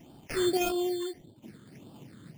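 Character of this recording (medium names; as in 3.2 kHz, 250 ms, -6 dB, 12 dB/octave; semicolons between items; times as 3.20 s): aliases and images of a low sample rate 3.9 kHz, jitter 0%; phasing stages 8, 1.7 Hz, lowest notch 740–2000 Hz; random-step tremolo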